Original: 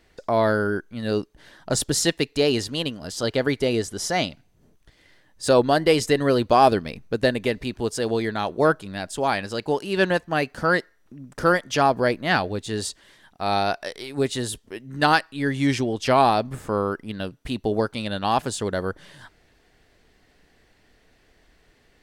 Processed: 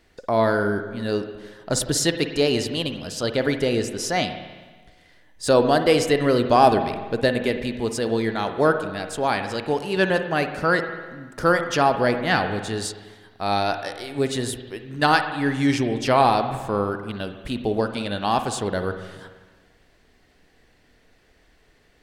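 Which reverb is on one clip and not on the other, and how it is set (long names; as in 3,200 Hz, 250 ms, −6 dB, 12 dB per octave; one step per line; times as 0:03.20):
spring reverb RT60 1.4 s, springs 49/53 ms, chirp 45 ms, DRR 7.5 dB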